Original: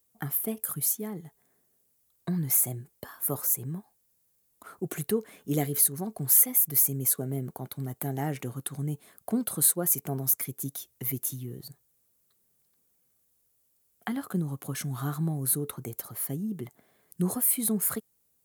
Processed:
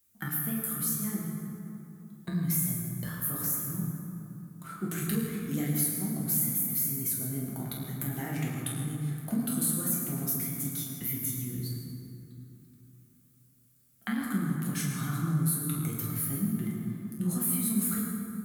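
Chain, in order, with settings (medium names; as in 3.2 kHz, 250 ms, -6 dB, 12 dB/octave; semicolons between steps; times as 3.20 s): high-order bell 610 Hz -9.5 dB; compression 3:1, threshold -33 dBFS, peak gain reduction 13 dB; reverberation RT60 2.9 s, pre-delay 7 ms, DRR -5 dB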